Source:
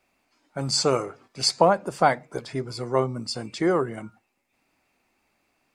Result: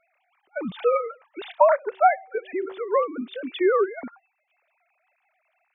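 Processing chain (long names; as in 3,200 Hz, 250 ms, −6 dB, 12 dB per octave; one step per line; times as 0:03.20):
three sine waves on the formant tracks
in parallel at −0.5 dB: downward compressor, threshold −36 dBFS, peak gain reduction 21.5 dB
0:01.67–0:03.63: on the sum: hum removal 382 Hz, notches 2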